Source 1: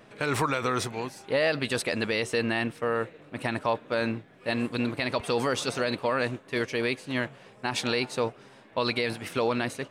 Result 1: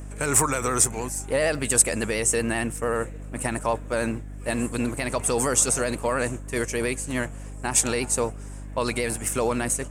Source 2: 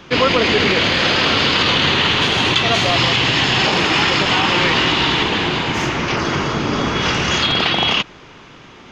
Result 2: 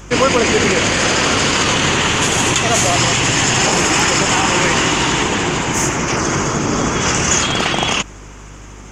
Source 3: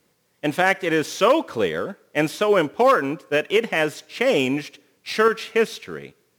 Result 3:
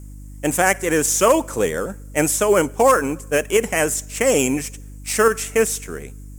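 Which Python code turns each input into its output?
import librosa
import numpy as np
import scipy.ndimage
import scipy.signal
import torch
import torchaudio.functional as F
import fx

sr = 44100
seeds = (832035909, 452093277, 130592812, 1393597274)

y = fx.vibrato(x, sr, rate_hz=13.0, depth_cents=40.0)
y = fx.high_shelf_res(y, sr, hz=5600.0, db=12.5, q=3.0)
y = fx.dmg_buzz(y, sr, base_hz=50.0, harmonics=6, level_db=-39.0, tilt_db=-7, odd_only=False)
y = F.gain(torch.from_numpy(y), 2.0).numpy()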